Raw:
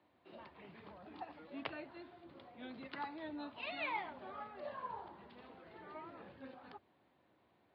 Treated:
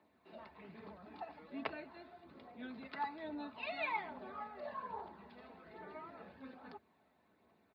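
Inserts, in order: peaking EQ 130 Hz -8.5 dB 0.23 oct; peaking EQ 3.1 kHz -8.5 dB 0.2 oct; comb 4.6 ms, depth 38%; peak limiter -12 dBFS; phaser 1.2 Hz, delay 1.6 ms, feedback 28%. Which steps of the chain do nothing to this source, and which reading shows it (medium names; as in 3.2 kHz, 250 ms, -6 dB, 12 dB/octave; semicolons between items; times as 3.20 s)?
peak limiter -12 dBFS: peak at its input -23.5 dBFS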